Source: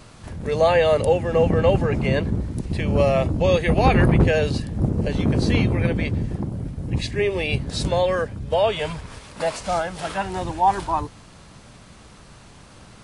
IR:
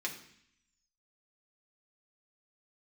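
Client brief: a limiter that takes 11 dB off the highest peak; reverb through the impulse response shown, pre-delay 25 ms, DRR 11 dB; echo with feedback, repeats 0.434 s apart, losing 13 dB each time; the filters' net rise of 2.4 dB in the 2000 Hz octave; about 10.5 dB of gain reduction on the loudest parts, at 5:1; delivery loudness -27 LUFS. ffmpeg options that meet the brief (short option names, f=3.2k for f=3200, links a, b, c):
-filter_complex "[0:a]equalizer=f=2k:t=o:g=3,acompressor=threshold=-24dB:ratio=5,alimiter=level_in=2dB:limit=-24dB:level=0:latency=1,volume=-2dB,aecho=1:1:434|868|1302:0.224|0.0493|0.0108,asplit=2[a][b];[1:a]atrim=start_sample=2205,adelay=25[c];[b][c]afir=irnorm=-1:irlink=0,volume=-13.5dB[d];[a][d]amix=inputs=2:normalize=0,volume=7dB"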